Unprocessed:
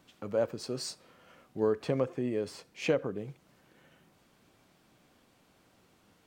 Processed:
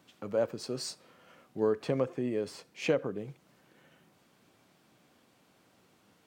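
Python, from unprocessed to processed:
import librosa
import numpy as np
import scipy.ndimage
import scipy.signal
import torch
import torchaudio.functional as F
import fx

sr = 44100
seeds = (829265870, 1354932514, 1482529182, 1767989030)

y = scipy.signal.sosfilt(scipy.signal.butter(2, 99.0, 'highpass', fs=sr, output='sos'), x)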